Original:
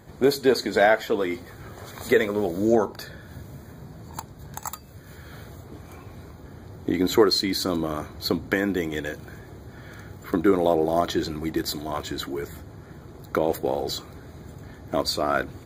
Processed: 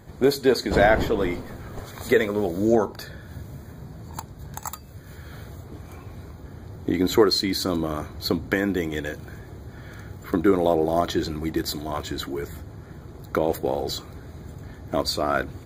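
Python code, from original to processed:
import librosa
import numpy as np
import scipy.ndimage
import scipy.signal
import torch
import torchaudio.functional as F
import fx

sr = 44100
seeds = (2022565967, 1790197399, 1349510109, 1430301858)

y = fx.dmg_wind(x, sr, seeds[0], corner_hz=450.0, level_db=-25.0, at=(0.7, 1.79), fade=0.02)
y = fx.low_shelf(y, sr, hz=94.0, db=7.0)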